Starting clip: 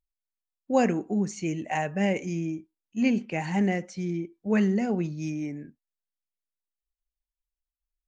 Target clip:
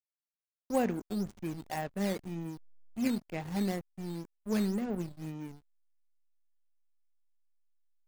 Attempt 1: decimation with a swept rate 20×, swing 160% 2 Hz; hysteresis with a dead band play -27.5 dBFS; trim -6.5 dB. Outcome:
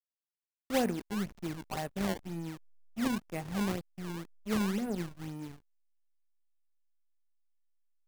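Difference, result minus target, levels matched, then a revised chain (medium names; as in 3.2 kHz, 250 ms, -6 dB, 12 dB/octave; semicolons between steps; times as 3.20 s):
decimation with a swept rate: distortion +9 dB
decimation with a swept rate 6×, swing 160% 2 Hz; hysteresis with a dead band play -27.5 dBFS; trim -6.5 dB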